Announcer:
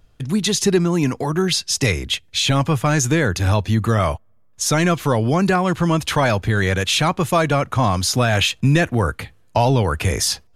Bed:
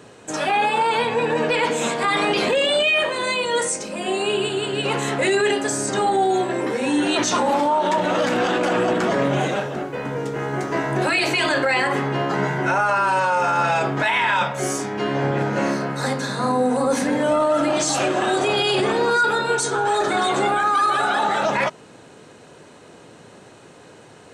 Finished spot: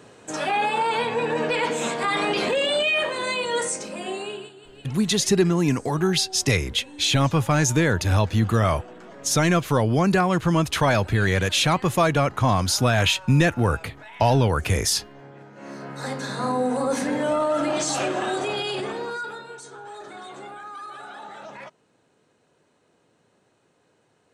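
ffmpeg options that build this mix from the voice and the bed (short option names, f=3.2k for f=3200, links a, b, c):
-filter_complex "[0:a]adelay=4650,volume=-2.5dB[a];[1:a]volume=16dB,afade=t=out:st=3.86:d=0.67:silence=0.1,afade=t=in:st=15.58:d=0.76:silence=0.105925,afade=t=out:st=17.99:d=1.52:silence=0.16788[b];[a][b]amix=inputs=2:normalize=0"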